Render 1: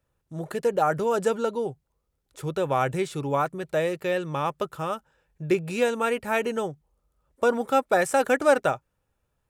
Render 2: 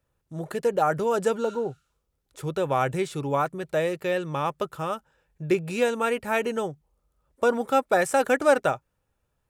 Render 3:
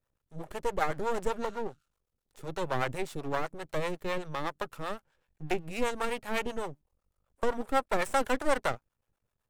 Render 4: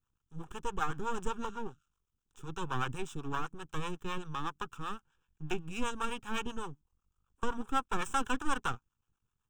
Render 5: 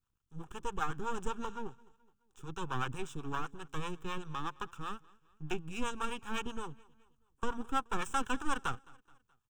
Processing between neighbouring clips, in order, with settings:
spectral replace 1.47–2.05 s, 1.2–12 kHz both
half-wave rectifier; harmonic tremolo 7.9 Hz, depth 70%, crossover 500 Hz
static phaser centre 3 kHz, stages 8
feedback delay 213 ms, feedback 48%, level -24 dB; trim -1.5 dB

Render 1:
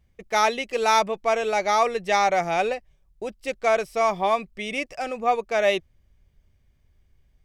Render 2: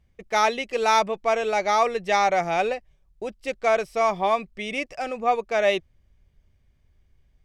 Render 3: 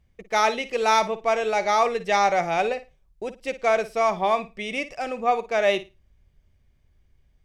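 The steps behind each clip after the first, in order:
treble shelf 10 kHz -8 dB
flutter echo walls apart 9.4 m, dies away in 0.24 s

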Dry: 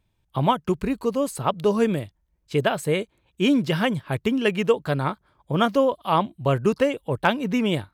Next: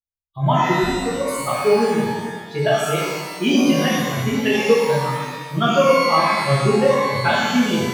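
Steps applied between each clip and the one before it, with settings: expander on every frequency bin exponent 2; pitch-shifted reverb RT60 1.4 s, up +12 st, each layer -8 dB, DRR -8.5 dB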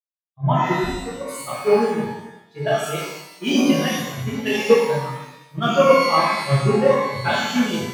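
three bands expanded up and down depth 100%; trim -2 dB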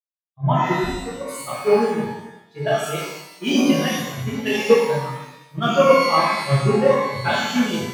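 no audible change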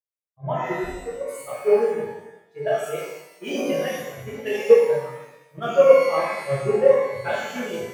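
graphic EQ 125/250/500/1000/2000/4000 Hz -5/-9/+11/-6/+3/-10 dB; trim -5.5 dB

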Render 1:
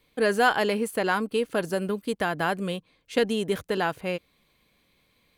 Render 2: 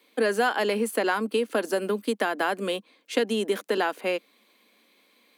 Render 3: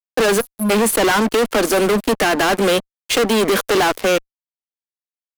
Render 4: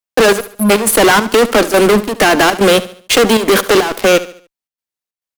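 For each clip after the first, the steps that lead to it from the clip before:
steep high-pass 210 Hz 72 dB/octave; compression 3:1, threshold -27 dBFS, peak gain reduction 9.5 dB; trim +5 dB
spectral selection erased 0.40–0.70 s, 220–10000 Hz; fuzz box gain 37 dB, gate -43 dBFS
square tremolo 2.3 Hz, depth 65%, duty 75%; feedback delay 72 ms, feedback 40%, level -16 dB; trim +6.5 dB

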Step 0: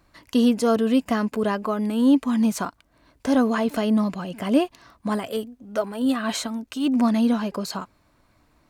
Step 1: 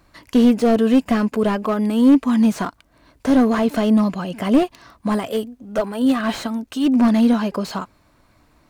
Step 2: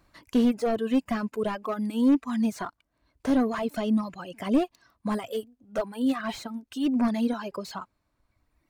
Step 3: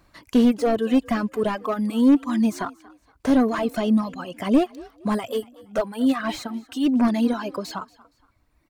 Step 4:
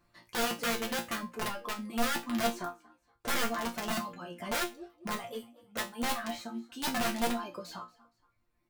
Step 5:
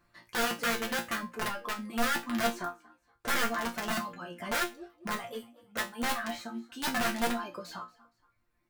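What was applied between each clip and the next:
slew-rate limiter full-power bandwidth 71 Hz; trim +5 dB
reverb removal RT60 1.9 s; trim -7.5 dB
frequency-shifting echo 234 ms, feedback 33%, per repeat +43 Hz, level -22 dB; trim +5 dB
integer overflow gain 16 dB; chord resonator A#2 fifth, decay 0.24 s; trim +1.5 dB
peaking EQ 1.6 kHz +5 dB 0.79 oct

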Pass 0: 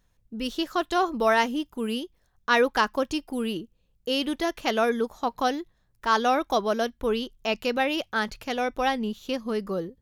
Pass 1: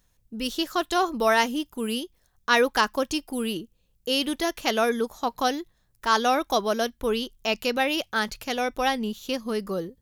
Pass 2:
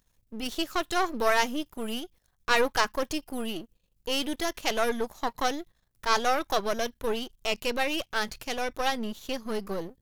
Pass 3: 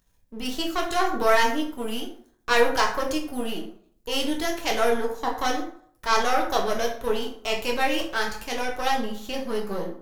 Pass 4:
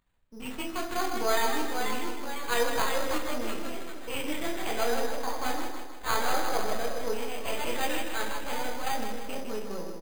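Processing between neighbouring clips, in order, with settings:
treble shelf 4.6 kHz +9.5 dB
partial rectifier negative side -12 dB
plate-style reverb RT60 0.58 s, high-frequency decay 0.6×, DRR -0.5 dB
ever faster or slower copies 635 ms, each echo +2 st, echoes 3, each echo -6 dB; on a send: feedback delay 156 ms, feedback 51%, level -7 dB; on the sum: careless resampling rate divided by 8×, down none, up hold; trim -8 dB

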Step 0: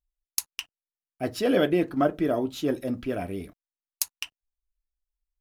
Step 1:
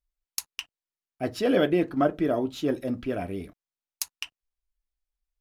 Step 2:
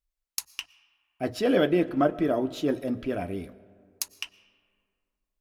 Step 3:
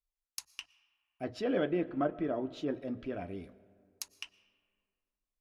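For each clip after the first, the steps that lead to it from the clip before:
treble shelf 8.2 kHz -7 dB
hum notches 60/120 Hz; on a send at -19 dB: reverberation RT60 2.2 s, pre-delay 75 ms
low-pass that closes with the level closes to 2.9 kHz, closed at -23.5 dBFS; trim -8.5 dB

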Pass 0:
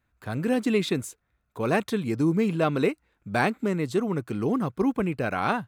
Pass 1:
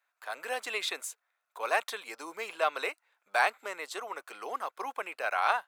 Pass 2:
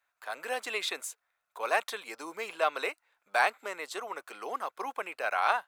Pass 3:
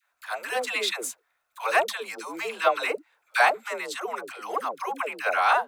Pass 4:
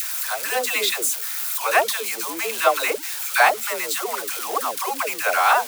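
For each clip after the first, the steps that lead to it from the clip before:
high-pass 660 Hz 24 dB/octave
bass shelf 180 Hz +10 dB
phase dispersion lows, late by 127 ms, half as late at 470 Hz; trim +6 dB
zero-crossing glitches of -23 dBFS; trim +4 dB

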